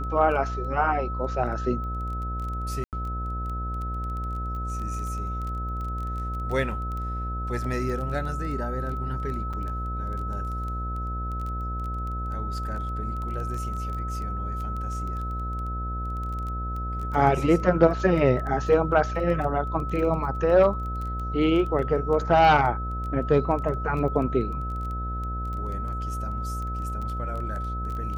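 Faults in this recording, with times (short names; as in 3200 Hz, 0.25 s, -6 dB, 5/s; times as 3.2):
buzz 60 Hz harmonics 13 -31 dBFS
crackle 12/s -32 dBFS
tone 1300 Hz -33 dBFS
2.84–2.93 gap 88 ms
9.53–9.54 gap 5.4 ms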